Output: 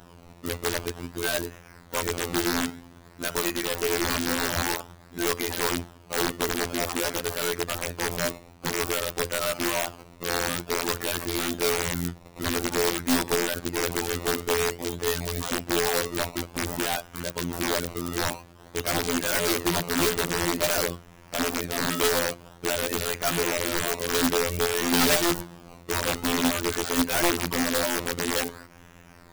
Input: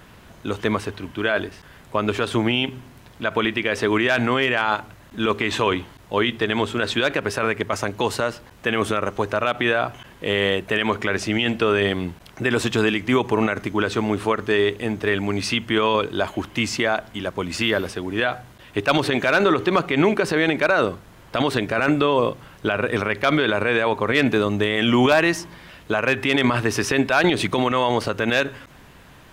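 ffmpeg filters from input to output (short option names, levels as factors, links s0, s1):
-af "acrusher=samples=19:mix=1:aa=0.000001:lfo=1:lforange=19:lforate=0.51,afftfilt=real='hypot(re,im)*cos(PI*b)':imag='0':win_size=2048:overlap=0.75,aeval=exprs='(mod(5.31*val(0)+1,2)-1)/5.31':c=same"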